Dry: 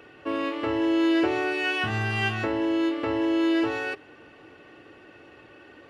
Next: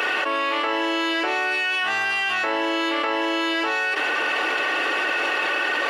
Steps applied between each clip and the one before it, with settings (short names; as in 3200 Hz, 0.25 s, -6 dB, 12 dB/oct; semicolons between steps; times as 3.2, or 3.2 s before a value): HPF 800 Hz 12 dB/oct; fast leveller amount 100%; gain +2 dB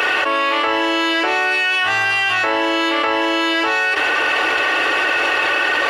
resonant low shelf 120 Hz +9.5 dB, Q 3; gain +6 dB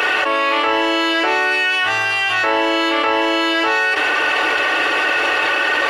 reverb RT60 0.35 s, pre-delay 7 ms, DRR 11.5 dB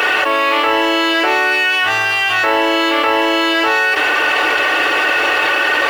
bit-crush 7-bit; gain +2.5 dB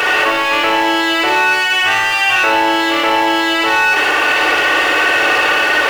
in parallel at -10.5 dB: wavefolder -15.5 dBFS; on the sum: flutter echo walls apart 10.3 m, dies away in 0.8 s; gain -1 dB